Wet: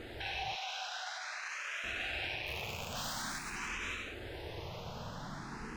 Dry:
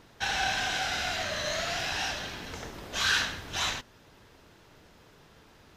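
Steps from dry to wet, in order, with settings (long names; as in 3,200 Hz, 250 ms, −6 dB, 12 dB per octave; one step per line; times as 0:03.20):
loose part that buzzes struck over −46 dBFS, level −20 dBFS
0:02.46–0:03.38: wrap-around overflow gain 24 dB
downward compressor 3 to 1, threshold −49 dBFS, peak gain reduction 17.5 dB
low-pass filter 3,600 Hz 6 dB per octave
reverb whose tail is shaped and stops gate 370 ms flat, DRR −0.5 dB
brickwall limiter −39.5 dBFS, peak gain reduction 8.5 dB
0:00.55–0:01.84: Bessel high-pass filter 820 Hz, order 8
frequency shifter mixed with the dry sound +0.48 Hz
level +12.5 dB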